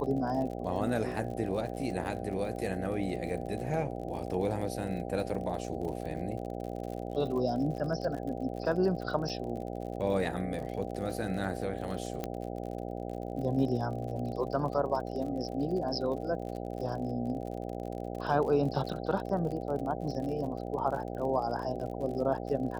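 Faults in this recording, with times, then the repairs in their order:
buzz 60 Hz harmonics 13 -38 dBFS
crackle 49 per s -39 dBFS
9.29–9.30 s: dropout 6.2 ms
12.24 s: pop -20 dBFS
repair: de-click; de-hum 60 Hz, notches 13; interpolate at 9.29 s, 6.2 ms

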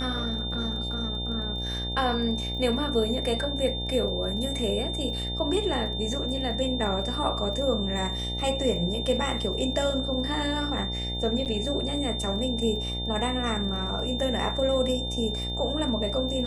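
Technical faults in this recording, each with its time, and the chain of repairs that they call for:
buzz 60 Hz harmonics 15 -33 dBFS
crackle 26 per s -38 dBFS
whine 3.6 kHz -32 dBFS
11.45–11.46 s: dropout 8.1 ms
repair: de-click; de-hum 60 Hz, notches 15; band-stop 3.6 kHz, Q 30; interpolate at 11.45 s, 8.1 ms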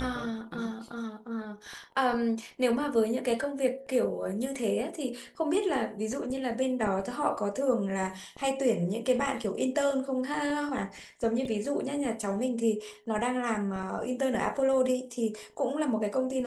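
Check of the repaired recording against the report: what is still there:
nothing left

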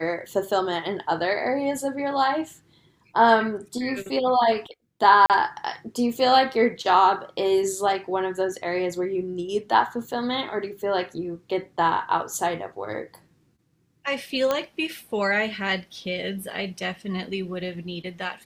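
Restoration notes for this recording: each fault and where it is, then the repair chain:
5.26–5.30 s: dropout 38 ms
14.51 s: pop -10 dBFS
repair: de-click; interpolate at 5.26 s, 38 ms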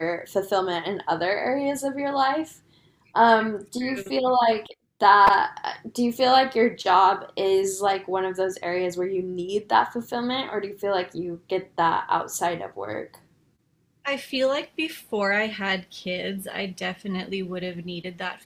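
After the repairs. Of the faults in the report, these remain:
nothing left

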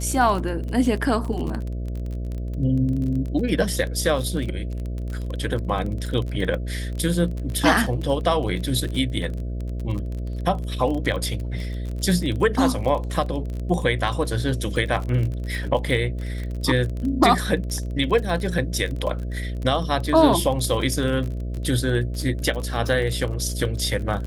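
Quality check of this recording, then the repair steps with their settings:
buzz 60 Hz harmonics 11 -28 dBFS
crackle 30 per s -28 dBFS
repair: de-click; de-hum 60 Hz, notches 11

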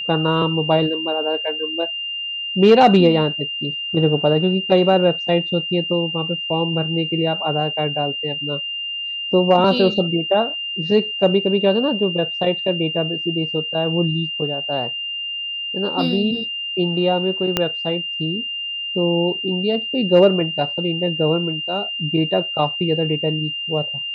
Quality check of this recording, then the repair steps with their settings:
whine 2.8 kHz -24 dBFS
17.57 s: pop -3 dBFS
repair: de-click; band-stop 2.8 kHz, Q 30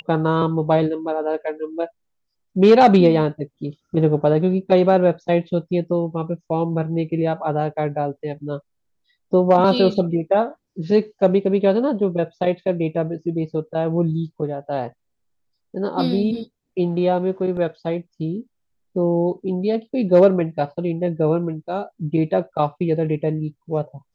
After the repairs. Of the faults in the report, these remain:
17.57 s: pop

